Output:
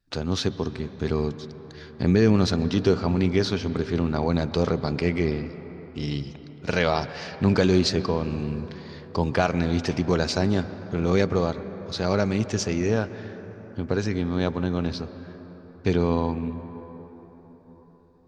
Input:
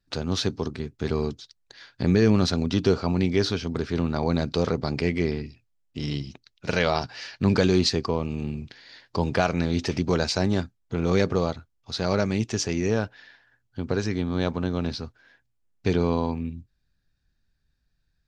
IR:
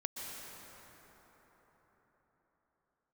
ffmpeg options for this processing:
-filter_complex "[0:a]asplit=2[a][b];[1:a]atrim=start_sample=2205,lowpass=3.3k[c];[b][c]afir=irnorm=-1:irlink=0,volume=-10dB[d];[a][d]amix=inputs=2:normalize=0,volume=-1dB"

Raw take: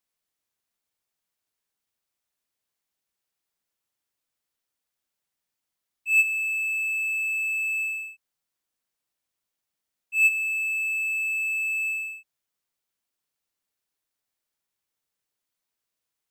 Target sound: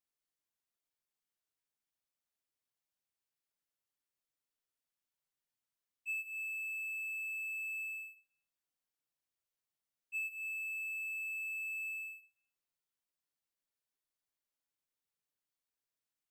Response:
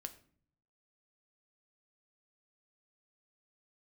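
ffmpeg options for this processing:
-filter_complex "[0:a]acompressor=threshold=-27dB:ratio=12[a];[1:a]atrim=start_sample=2205[b];[a][b]afir=irnorm=-1:irlink=0,volume=-5.5dB"

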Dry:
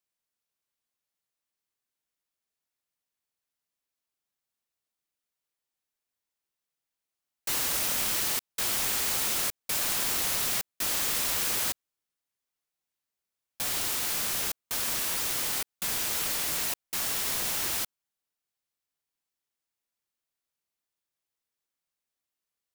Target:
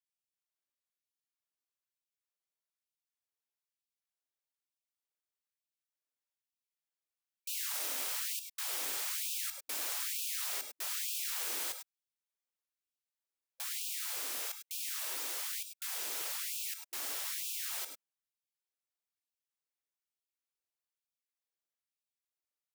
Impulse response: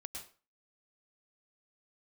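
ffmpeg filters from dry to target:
-filter_complex "[1:a]atrim=start_sample=2205,afade=t=out:st=0.15:d=0.01,atrim=end_sample=7056[a];[0:a][a]afir=irnorm=-1:irlink=0,afftfilt=real='re*gte(b*sr/1024,220*pow(2400/220,0.5+0.5*sin(2*PI*1.1*pts/sr)))':imag='im*gte(b*sr/1024,220*pow(2400/220,0.5+0.5*sin(2*PI*1.1*pts/sr)))':win_size=1024:overlap=0.75,volume=-3.5dB"

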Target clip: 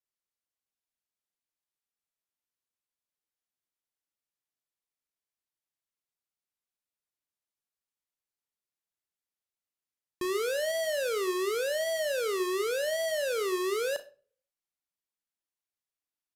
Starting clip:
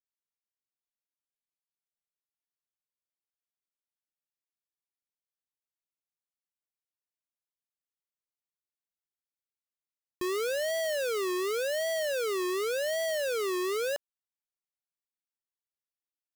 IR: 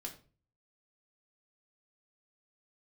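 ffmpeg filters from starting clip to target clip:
-filter_complex "[0:a]aresample=32000,aresample=44100,asplit=2[a][b];[b]highshelf=f=9.9k:g=6[c];[1:a]atrim=start_sample=2205,adelay=35[d];[c][d]afir=irnorm=-1:irlink=0,volume=-8.5dB[e];[a][e]amix=inputs=2:normalize=0"

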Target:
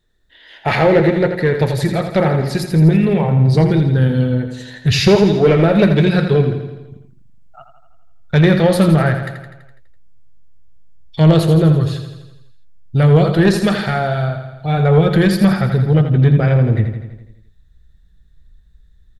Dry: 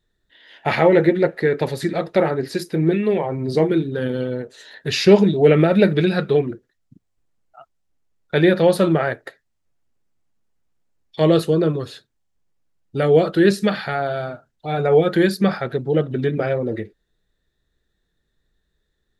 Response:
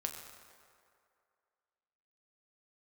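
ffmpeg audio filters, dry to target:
-filter_complex "[0:a]asubboost=boost=10.5:cutoff=120,acontrast=82,asplit=2[a][b];[b]aecho=0:1:83|166|249|332|415|498|581|664:0.376|0.226|0.135|0.0812|0.0487|0.0292|0.0175|0.0105[c];[a][c]amix=inputs=2:normalize=0,volume=-2.5dB"

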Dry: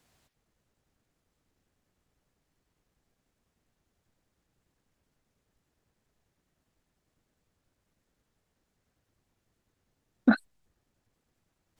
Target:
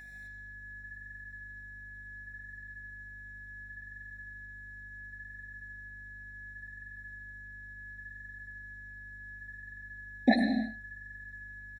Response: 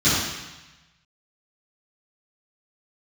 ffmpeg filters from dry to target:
-filter_complex "[0:a]highpass=f=790:p=1,equalizer=f=1.5k:t=o:w=1.3:g=5.5,aeval=exprs='val(0)+0.00398*sin(2*PI*1700*n/s)':c=same,flanger=delay=2.9:depth=6:regen=-55:speed=0.7:shape=sinusoidal,aeval=exprs='val(0)+0.000447*(sin(2*PI*50*n/s)+sin(2*PI*2*50*n/s)/2+sin(2*PI*3*50*n/s)/3+sin(2*PI*4*50*n/s)/4+sin(2*PI*5*50*n/s)/5)':c=same,asplit=2[a][b];[b]adelay=77,lowpass=f=2k:p=1,volume=-9dB,asplit=2[c][d];[d]adelay=77,lowpass=f=2k:p=1,volume=0.16[e];[a][c][e]amix=inputs=3:normalize=0,asplit=2[f][g];[1:a]atrim=start_sample=2205,afade=t=out:st=0.28:d=0.01,atrim=end_sample=12789,adelay=93[h];[g][h]afir=irnorm=-1:irlink=0,volume=-26.5dB[i];[f][i]amix=inputs=2:normalize=0,afftfilt=real='re*eq(mod(floor(b*sr/1024/860),2),0)':imag='im*eq(mod(floor(b*sr/1024/860),2),0)':win_size=1024:overlap=0.75,volume=11dB"

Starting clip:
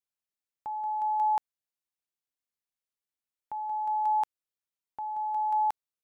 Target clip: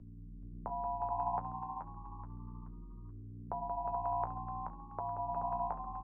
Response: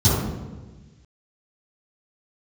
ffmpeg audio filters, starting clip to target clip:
-filter_complex "[0:a]lowpass=f=1.3k:w=0.5412,lowpass=f=1.3k:w=1.3066,bandreject=f=138.1:t=h:w=4,bandreject=f=276.2:t=h:w=4,bandreject=f=414.3:t=h:w=4,bandreject=f=552.4:t=h:w=4,bandreject=f=690.5:t=h:w=4,bandreject=f=828.6:t=h:w=4,bandreject=f=966.7:t=h:w=4,acompressor=threshold=-30dB:ratio=6,aeval=exprs='val(0)+0.00141*(sin(2*PI*60*n/s)+sin(2*PI*2*60*n/s)/2+sin(2*PI*3*60*n/s)/3+sin(2*PI*4*60*n/s)/4+sin(2*PI*5*60*n/s)/5)':c=same,flanger=delay=9.1:depth=8.5:regen=-44:speed=0.6:shape=sinusoidal,afreqshift=-16,tremolo=f=140:d=0.4,asuperstop=centerf=830:order=4:qfactor=6.5,asplit=2[a][b];[b]asplit=4[c][d][e][f];[c]adelay=428,afreqshift=61,volume=-7dB[g];[d]adelay=856,afreqshift=122,volume=-16.6dB[h];[e]adelay=1284,afreqshift=183,volume=-26.3dB[i];[f]adelay=1712,afreqshift=244,volume=-35.9dB[j];[g][h][i][j]amix=inputs=4:normalize=0[k];[a][k]amix=inputs=2:normalize=0,volume=15.5dB"

